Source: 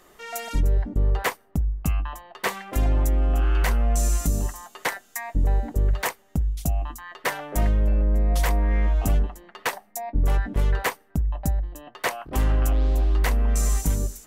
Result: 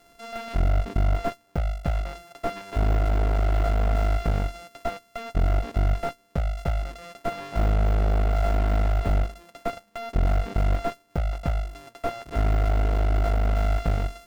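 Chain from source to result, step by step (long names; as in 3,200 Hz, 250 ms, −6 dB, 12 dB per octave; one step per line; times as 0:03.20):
samples sorted by size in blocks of 64 samples
harmonic generator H 2 −8 dB, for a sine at −13.5 dBFS
slew-rate limiting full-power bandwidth 100 Hz
level −2 dB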